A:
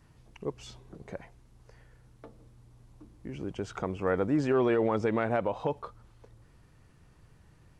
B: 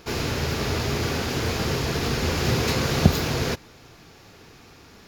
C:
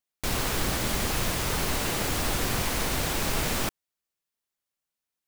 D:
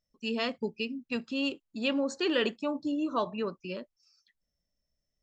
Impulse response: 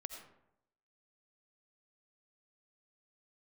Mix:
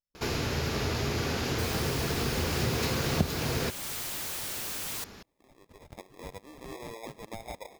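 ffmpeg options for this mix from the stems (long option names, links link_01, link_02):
-filter_complex "[0:a]highpass=830,highshelf=frequency=4900:gain=8.5,acrusher=samples=30:mix=1:aa=0.000001,adelay=2150,volume=-7.5dB[link_01];[1:a]adelay=150,volume=0.5dB[link_02];[2:a]aeval=exprs='(mod(25.1*val(0)+1,2)-1)/25.1':channel_layout=same,adelay=1350,volume=-3dB[link_03];[3:a]volume=-14.5dB[link_04];[link_01][link_02][link_03][link_04]amix=inputs=4:normalize=0,acompressor=threshold=-31dB:ratio=2"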